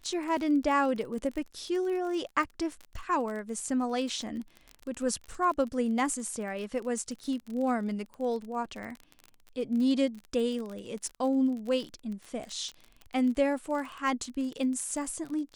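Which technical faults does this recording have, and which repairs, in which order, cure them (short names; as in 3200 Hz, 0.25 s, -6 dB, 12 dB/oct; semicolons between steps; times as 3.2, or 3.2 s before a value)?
crackle 31/s -35 dBFS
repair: de-click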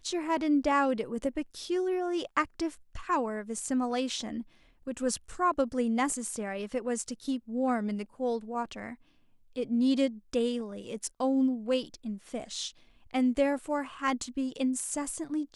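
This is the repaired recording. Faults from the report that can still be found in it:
none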